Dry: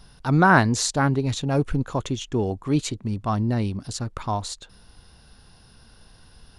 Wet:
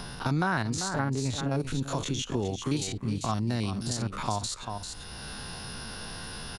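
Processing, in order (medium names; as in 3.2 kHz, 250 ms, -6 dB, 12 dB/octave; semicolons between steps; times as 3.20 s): spectrogram pixelated in time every 50 ms; treble shelf 2.3 kHz +2.5 dB, from 1.60 s +10.5 dB; compression 1.5:1, threshold -30 dBFS, peak gain reduction 7 dB; delay 392 ms -11.5 dB; three bands compressed up and down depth 70%; trim -2 dB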